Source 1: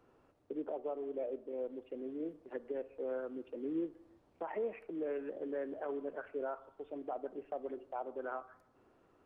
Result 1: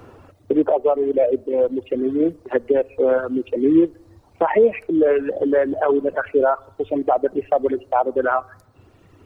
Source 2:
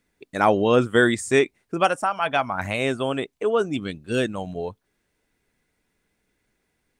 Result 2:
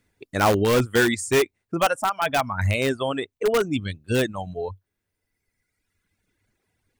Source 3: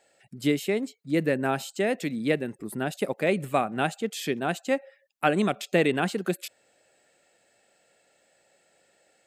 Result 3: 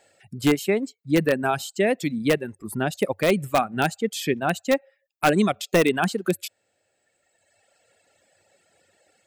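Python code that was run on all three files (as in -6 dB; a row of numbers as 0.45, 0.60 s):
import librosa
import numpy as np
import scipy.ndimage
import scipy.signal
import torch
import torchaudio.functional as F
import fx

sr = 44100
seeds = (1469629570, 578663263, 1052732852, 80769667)

p1 = fx.dereverb_blind(x, sr, rt60_s=1.8)
p2 = fx.peak_eq(p1, sr, hz=95.0, db=12.5, octaves=0.5)
p3 = (np.mod(10.0 ** (14.5 / 20.0) * p2 + 1.0, 2.0) - 1.0) / 10.0 ** (14.5 / 20.0)
p4 = p2 + (p3 * librosa.db_to_amplitude(-6.5))
y = p4 * 10.0 ** (-6 / 20.0) / np.max(np.abs(p4))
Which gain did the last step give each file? +20.0, -1.5, +1.5 dB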